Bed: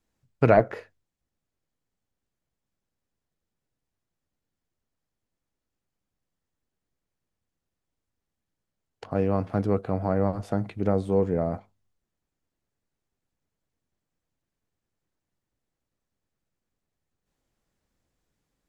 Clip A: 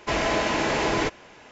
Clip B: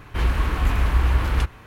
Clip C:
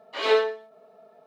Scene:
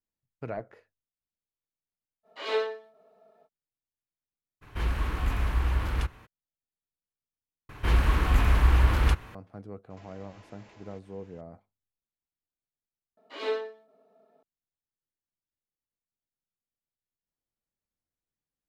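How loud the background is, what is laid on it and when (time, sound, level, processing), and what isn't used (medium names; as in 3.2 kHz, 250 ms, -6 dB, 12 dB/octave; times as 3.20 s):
bed -18 dB
2.23 s: add C -7.5 dB, fades 0.05 s
4.61 s: add B -7.5 dB, fades 0.02 s
7.69 s: replace with B -1.5 dB
9.90 s: add A -16 dB + compression 16:1, threshold -36 dBFS
13.17 s: replace with C -11.5 dB + peaking EQ 280 Hz +10.5 dB 0.65 oct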